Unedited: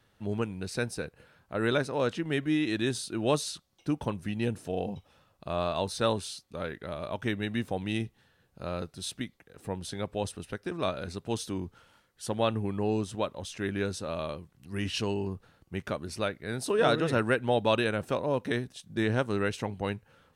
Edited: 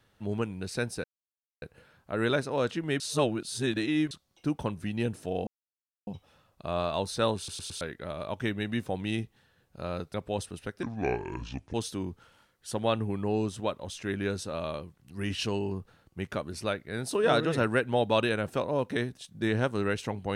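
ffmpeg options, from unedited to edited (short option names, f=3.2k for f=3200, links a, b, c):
-filter_complex "[0:a]asplit=12[a][b][c][d][e][f][g][h][i][j][k][l];[a]atrim=end=1.04,asetpts=PTS-STARTPTS,afade=t=out:st=1.036:d=0.004:c=hsin,apad=pad_dur=0.58[m];[b]atrim=start=1.04:end=2.422,asetpts=PTS-STARTPTS,afade=t=in:d=0.004:c=hsin[n];[c]atrim=start=2.418:end=3.532,asetpts=PTS-STARTPTS,areverse[o];[d]atrim=start=3.528:end=4.89,asetpts=PTS-STARTPTS,afade=t=out:st=1.358:d=0.004:c=hsin,apad=pad_dur=0.6[p];[e]atrim=start=4.89:end=6.302,asetpts=PTS-STARTPTS,afade=t=in:d=0.004:c=hsin[q];[f]atrim=start=6.188:end=6.302[r];[g]atrim=start=6.188:end=6.302[s];[h]atrim=start=6.188:end=6.302[t];[i]atrim=start=6.628:end=8.962[u];[j]atrim=start=9.998:end=10.694[v];[k]atrim=start=10.69:end=11.29,asetpts=PTS-STARTPTS,asetrate=29106,aresample=44100[w];[l]atrim=start=11.286[x];[m][n]concat=n=2:v=0:a=1[y];[y][o]acrossfade=d=0.004:c1=hsin:c2=hsin[z];[p][q]concat=n=2:v=0:a=1[aa];[z][aa]acrossfade=d=0.004:c1=hsin:c2=hsin[ab];[ab][r]acrossfade=d=0.004:c1=hsin:c2=hsin[ac];[ac][s]acrossfade=d=0.004:c1=hsin:c2=hsin[ad];[ad][t]acrossfade=d=0.004:c1=hsin:c2=hsin[ae];[ae][u]acrossfade=d=0.004:c1=hsin:c2=hsin[af];[af][v]acrossfade=d=0.004:c1=hsin:c2=hsin[ag];[ag][w]acrossfade=d=0.004:c1=hsin:c2=hsin[ah];[ah][x]acrossfade=d=0.004:c1=hsin:c2=hsin"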